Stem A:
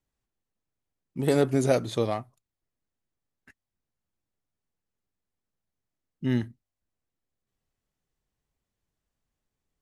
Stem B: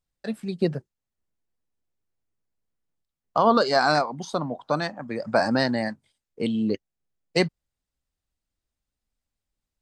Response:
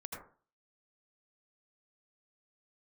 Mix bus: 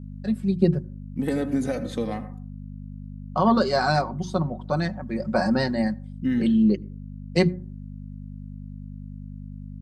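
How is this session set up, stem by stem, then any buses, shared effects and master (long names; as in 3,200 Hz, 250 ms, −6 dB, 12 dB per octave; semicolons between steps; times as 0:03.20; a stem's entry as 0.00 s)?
−6.5 dB, 0.00 s, send −7.5 dB, parametric band 1,800 Hz +8 dB 0.51 octaves; comb filter 3.9 ms, depth 63%; downward compressor 3 to 1, threshold −23 dBFS, peak gain reduction 7 dB
−5.5 dB, 0.00 s, send −23 dB, mains-hum notches 60/120/180/240/300/360 Hz; comb filter 5.4 ms, depth 69%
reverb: on, RT60 0.40 s, pre-delay 72 ms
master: mains hum 50 Hz, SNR 11 dB; parametric band 180 Hz +10 dB 1.8 octaves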